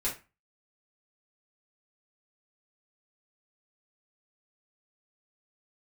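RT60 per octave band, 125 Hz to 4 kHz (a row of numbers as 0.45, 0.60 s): 0.35, 0.30, 0.25, 0.30, 0.30, 0.25 s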